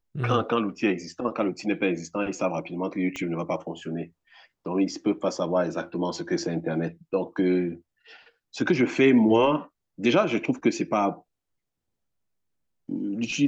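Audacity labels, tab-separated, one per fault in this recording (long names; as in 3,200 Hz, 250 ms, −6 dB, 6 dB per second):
3.160000	3.160000	click −19 dBFS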